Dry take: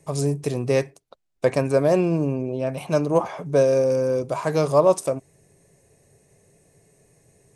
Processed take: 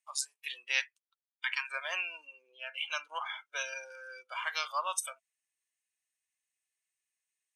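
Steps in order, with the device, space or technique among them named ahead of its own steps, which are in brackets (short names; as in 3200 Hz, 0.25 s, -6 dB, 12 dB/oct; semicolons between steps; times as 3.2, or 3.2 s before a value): headphones lying on a table (HPF 1300 Hz 24 dB/oct; bell 3100 Hz +11 dB 0.54 oct); spectral noise reduction 25 dB; 0.82–1.7 steep high-pass 860 Hz 72 dB/oct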